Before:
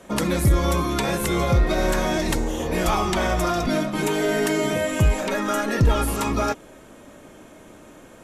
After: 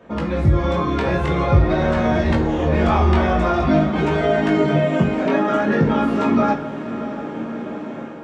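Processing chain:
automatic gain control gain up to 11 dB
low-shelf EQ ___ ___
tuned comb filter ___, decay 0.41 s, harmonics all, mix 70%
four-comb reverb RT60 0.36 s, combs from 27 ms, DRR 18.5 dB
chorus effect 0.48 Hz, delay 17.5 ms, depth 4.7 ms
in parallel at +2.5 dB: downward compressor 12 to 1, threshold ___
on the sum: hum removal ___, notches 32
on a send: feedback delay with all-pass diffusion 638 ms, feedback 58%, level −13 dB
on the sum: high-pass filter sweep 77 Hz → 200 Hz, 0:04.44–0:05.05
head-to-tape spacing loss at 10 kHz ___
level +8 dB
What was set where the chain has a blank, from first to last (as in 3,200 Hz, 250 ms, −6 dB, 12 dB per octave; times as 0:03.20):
430 Hz, −5 dB, 76 Hz, −34 dBFS, 47.04 Hz, 37 dB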